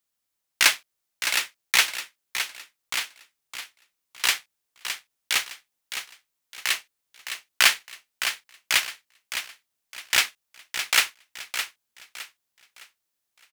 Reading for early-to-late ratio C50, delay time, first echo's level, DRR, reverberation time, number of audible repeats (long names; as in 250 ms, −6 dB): no reverb audible, 612 ms, −9.0 dB, no reverb audible, no reverb audible, 3